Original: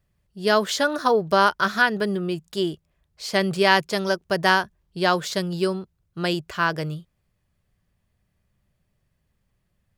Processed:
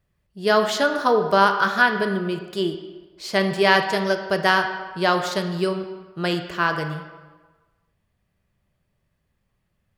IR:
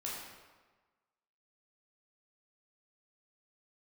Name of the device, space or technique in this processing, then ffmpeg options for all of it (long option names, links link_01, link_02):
filtered reverb send: -filter_complex "[0:a]asplit=2[link_01][link_02];[link_02]highpass=frequency=210:poles=1,lowpass=4500[link_03];[1:a]atrim=start_sample=2205[link_04];[link_03][link_04]afir=irnorm=-1:irlink=0,volume=-3dB[link_05];[link_01][link_05]amix=inputs=2:normalize=0,volume=-2dB"